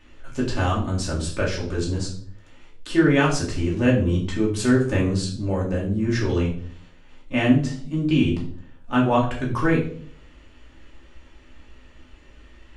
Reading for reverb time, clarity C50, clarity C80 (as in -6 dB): 0.55 s, 7.5 dB, 12.0 dB